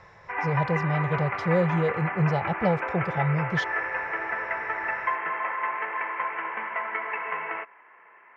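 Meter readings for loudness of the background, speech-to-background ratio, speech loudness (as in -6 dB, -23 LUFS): -30.0 LUFS, 3.0 dB, -27.0 LUFS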